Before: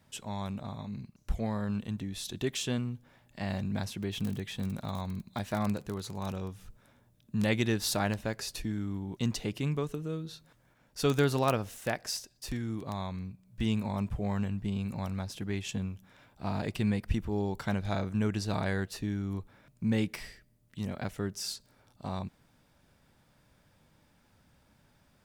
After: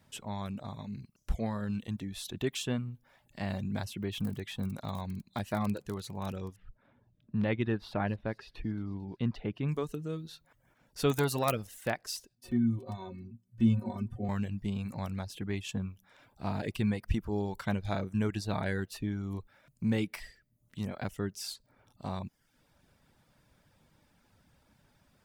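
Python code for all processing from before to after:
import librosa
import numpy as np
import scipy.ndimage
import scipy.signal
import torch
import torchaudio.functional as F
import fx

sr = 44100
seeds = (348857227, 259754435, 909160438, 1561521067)

y = fx.chain(x, sr, fx.air_absorb(metres=380.0),
    fx.echo_wet_highpass(ms=223, feedback_pct=60, hz=4700.0, wet_db=-14.0), at=(6.56, 9.69))
y = fx.chain(y, sr, fx.high_shelf(hz=4400.0, db=11.0),
    fx.transformer_sat(knee_hz=1300.0), at=(11.11, 11.67))
y = fx.chain(y, sr, fx.peak_eq(hz=250.0, db=13.5, octaves=2.4),
    fx.stiff_resonator(f0_hz=110.0, decay_s=0.23, stiffness=0.03), at=(12.35, 14.29))
y = fx.dynamic_eq(y, sr, hz=6000.0, q=1.3, threshold_db=-55.0, ratio=4.0, max_db=-4)
y = fx.dereverb_blind(y, sr, rt60_s=0.57)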